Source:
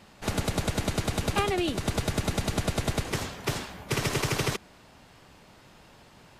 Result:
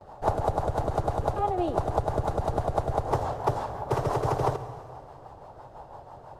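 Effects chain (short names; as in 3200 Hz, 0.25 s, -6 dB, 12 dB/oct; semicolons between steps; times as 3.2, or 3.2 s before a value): gate with hold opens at -47 dBFS; EQ curve 130 Hz 0 dB, 200 Hz -12 dB, 820 Hz +12 dB, 2300 Hz -19 dB, 3800 Hz -16 dB; compressor 5:1, threshold -28 dBFS, peak gain reduction 11 dB; rotary speaker horn 6 Hz; on a send: reverb RT60 2.2 s, pre-delay 48 ms, DRR 12 dB; on the sum: gain +8 dB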